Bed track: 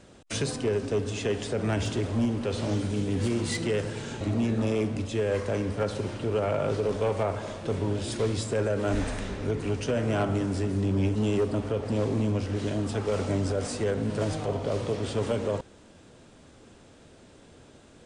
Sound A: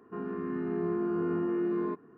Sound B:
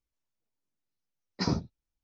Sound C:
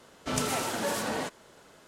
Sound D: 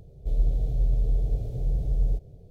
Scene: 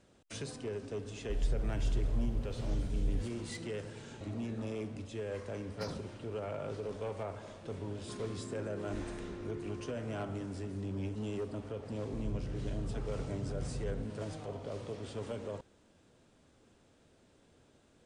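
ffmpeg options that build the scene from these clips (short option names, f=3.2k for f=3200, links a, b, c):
-filter_complex "[4:a]asplit=2[a][b];[0:a]volume=-12.5dB[c];[2:a]asoftclip=type=tanh:threshold=-28dB[d];[1:a]acompressor=threshold=-41dB:ratio=6:attack=3.2:release=140:knee=1:detection=peak[e];[b]bandpass=f=230:t=q:w=1.3:csg=0[f];[a]atrim=end=2.5,asetpts=PTS-STARTPTS,volume=-9dB,afade=t=in:d=0.004:c=hsin,afade=t=out:st=2.496:d=0.004:c=hsin,adelay=1040[g];[d]atrim=end=2.03,asetpts=PTS-STARTPTS,volume=-9.5dB,afade=t=in:d=0.004:c=hsin,afade=t=out:st=2.026:d=0.004:c=hsin,adelay=4400[h];[e]atrim=end=2.17,asetpts=PTS-STARTPTS,volume=-2.5dB,afade=t=in:d=0.004:c=hsin,afade=t=out:st=2.166:d=0.004:c=hsin,adelay=7970[i];[f]atrim=end=2.5,asetpts=PTS-STARTPTS,volume=-1dB,afade=t=in:d=0.004:c=hsin,afade=t=out:st=2.496:d=0.004:c=hsin,adelay=11870[j];[c][g][h][i][j]amix=inputs=5:normalize=0"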